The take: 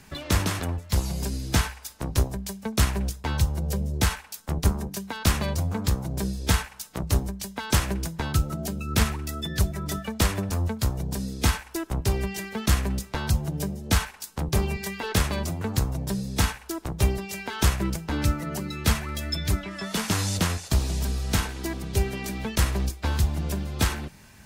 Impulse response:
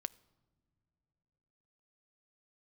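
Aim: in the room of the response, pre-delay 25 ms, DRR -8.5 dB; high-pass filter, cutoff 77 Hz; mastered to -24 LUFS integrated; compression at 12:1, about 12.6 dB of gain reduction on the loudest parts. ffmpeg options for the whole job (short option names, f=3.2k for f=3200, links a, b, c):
-filter_complex "[0:a]highpass=77,acompressor=threshold=-31dB:ratio=12,asplit=2[a][b];[1:a]atrim=start_sample=2205,adelay=25[c];[b][c]afir=irnorm=-1:irlink=0,volume=10.5dB[d];[a][d]amix=inputs=2:normalize=0,volume=3dB"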